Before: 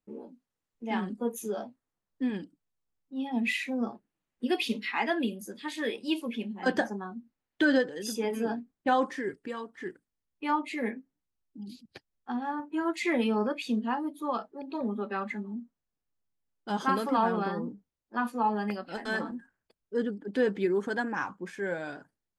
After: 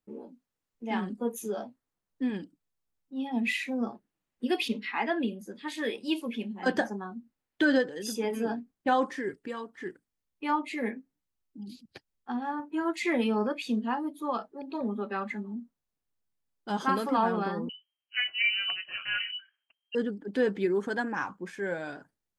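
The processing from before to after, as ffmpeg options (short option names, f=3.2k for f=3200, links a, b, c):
-filter_complex "[0:a]asettb=1/sr,asplit=3[a][b][c];[a]atrim=end=4.684[d];[b]atrim=start=4.68:end=5.67,asetpts=PTS-STARTPTS,afade=t=in:d=0.004:c=qsin,afade=t=out:st=0.986:d=0.004:c=qsin,lowpass=f=2.8k:p=1[e];[c]atrim=start=5.666[f];[d][e]acrossfade=d=0.004:c1=hsin:c2=qsin[g];[g][f]acrossfade=d=0.004:c1=qsin:c2=hsin,asettb=1/sr,asplit=3[h][i][j];[h]atrim=end=17.694[k];[i]atrim=start=17.69:end=19.95,asetpts=PTS-STARTPTS,afade=t=in:d=0.004:c=qsin,afade=t=out:st=2.256:d=0.004:c=qsin,lowpass=f=2.7k:t=q:w=0.5098,lowpass=f=2.7k:t=q:w=0.6013,lowpass=f=2.7k:t=q:w=0.9,lowpass=f=2.7k:t=q:w=2.563,afreqshift=-3200[l];[j]atrim=start=19.946[m];[k][l]acrossfade=d=0.004:c1=hsin:c2=qsin[n];[n][m]acrossfade=d=0.004:c1=qsin:c2=hsin"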